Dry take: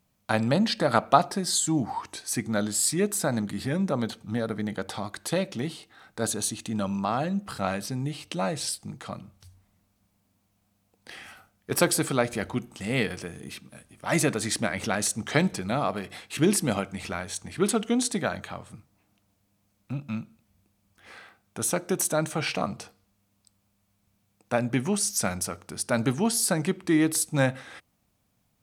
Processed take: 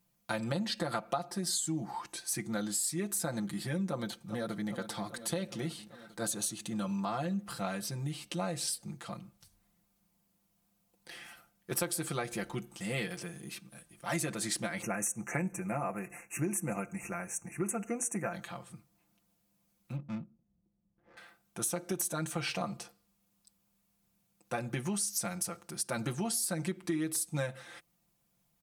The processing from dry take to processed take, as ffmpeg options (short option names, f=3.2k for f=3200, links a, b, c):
-filter_complex "[0:a]asplit=2[a][b];[b]afade=t=in:st=3.88:d=0.01,afade=t=out:st=4.67:d=0.01,aecho=0:1:400|800|1200|1600|2000|2400|2800|3200|3600|4000|4400:0.223872|0.167904|0.125928|0.094446|0.0708345|0.0531259|0.0398444|0.0298833|0.0224125|0.0168094|0.012607[c];[a][c]amix=inputs=2:normalize=0,asplit=3[d][e][f];[d]afade=t=out:st=14.81:d=0.02[g];[e]asuperstop=centerf=4000:order=20:qfactor=1.3,afade=t=in:st=14.81:d=0.02,afade=t=out:st=18.32:d=0.02[h];[f]afade=t=in:st=18.32:d=0.02[i];[g][h][i]amix=inputs=3:normalize=0,asettb=1/sr,asplit=3[j][k][l];[j]atrim=end=19.964[m];[k]atrim=start=19.96:end=21.17,asetpts=PTS-STARTPTS,afade=t=in:d=0.004:c=qsin,afade=t=out:st=1.206:d=0.004:c=qsin,adynamicsmooth=sensitivity=5:basefreq=500[n];[l]atrim=start=21.166[o];[m][n]acrossfade=d=0.004:c1=hsin:c2=qsin[p];[p][o]acrossfade=d=0.004:c1=qsin:c2=hsin,highshelf=f=7.4k:g=7.5,aecho=1:1:5.8:0.85,acompressor=threshold=-22dB:ratio=6,volume=-8dB"